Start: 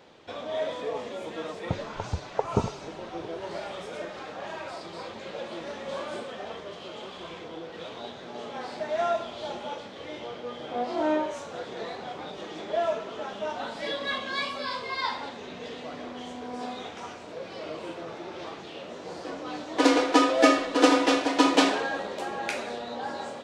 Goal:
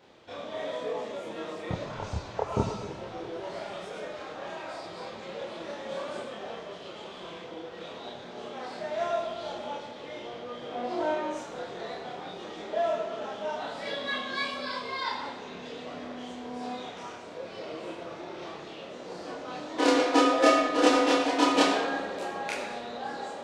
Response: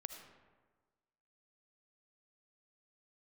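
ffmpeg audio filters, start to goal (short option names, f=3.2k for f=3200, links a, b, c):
-filter_complex "[0:a]asplit=2[a][b];[1:a]atrim=start_sample=2205,adelay=28[c];[b][c]afir=irnorm=-1:irlink=0,volume=6dB[d];[a][d]amix=inputs=2:normalize=0,volume=-6dB"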